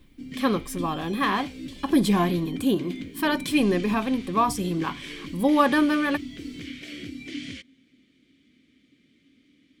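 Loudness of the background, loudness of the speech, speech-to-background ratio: -37.5 LUFS, -24.5 LUFS, 13.0 dB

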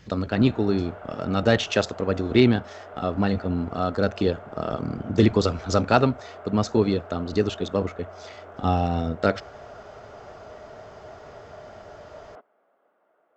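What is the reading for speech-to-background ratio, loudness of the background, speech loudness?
19.0 dB, -43.0 LUFS, -24.0 LUFS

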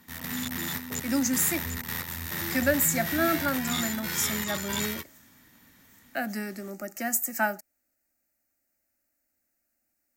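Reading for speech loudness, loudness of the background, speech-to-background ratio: -28.5 LUFS, -31.5 LUFS, 3.0 dB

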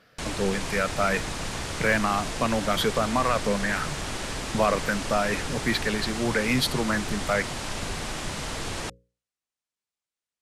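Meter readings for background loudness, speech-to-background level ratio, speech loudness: -32.0 LUFS, 5.5 dB, -26.5 LUFS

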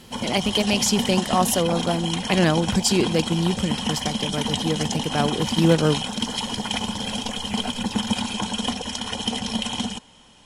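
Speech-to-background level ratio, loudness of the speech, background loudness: 3.0 dB, -23.0 LUFS, -26.0 LUFS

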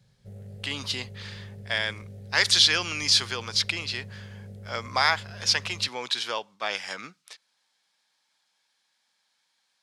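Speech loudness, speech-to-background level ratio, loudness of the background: -25.0 LUFS, 19.0 dB, -44.0 LUFS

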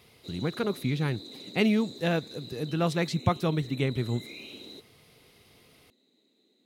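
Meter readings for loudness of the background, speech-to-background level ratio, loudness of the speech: -44.0 LUFS, 14.5 dB, -29.5 LUFS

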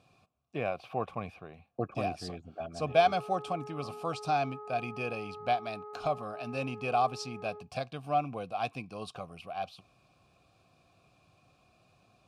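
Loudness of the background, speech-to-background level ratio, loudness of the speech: -45.5 LUFS, 11.5 dB, -34.0 LUFS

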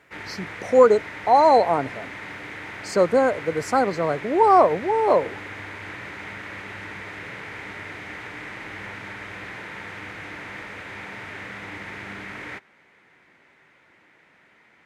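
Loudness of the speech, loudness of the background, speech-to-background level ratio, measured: -19.5 LUFS, -35.5 LUFS, 16.0 dB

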